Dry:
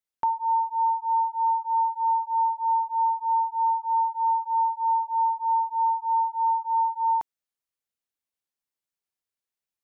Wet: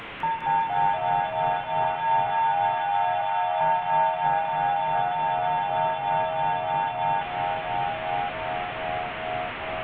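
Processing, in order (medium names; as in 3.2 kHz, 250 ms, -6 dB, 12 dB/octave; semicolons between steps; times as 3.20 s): one-bit delta coder 16 kbps, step -29 dBFS; 1.84–3.61 s: steep high-pass 680 Hz 96 dB/octave; echo that smears into a reverb 787 ms, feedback 48%, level -6.5 dB; reverberation, pre-delay 3 ms, DRR 8 dB; ever faster or slower copies 203 ms, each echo -2 st, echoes 3; trim -2 dB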